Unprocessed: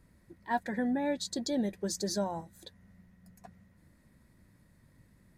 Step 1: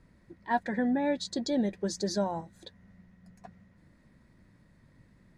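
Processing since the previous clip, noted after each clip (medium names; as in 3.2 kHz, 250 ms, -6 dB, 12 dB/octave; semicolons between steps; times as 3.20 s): Bessel low-pass 5 kHz, order 2; peaking EQ 76 Hz -4 dB 0.77 oct; trim +3 dB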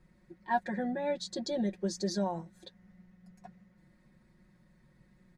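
comb 5.5 ms, depth 87%; trim -5.5 dB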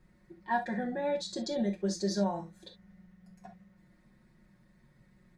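reverberation, pre-delay 3 ms, DRR 4.5 dB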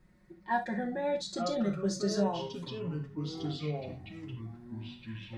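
ever faster or slower copies 726 ms, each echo -5 st, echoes 3, each echo -6 dB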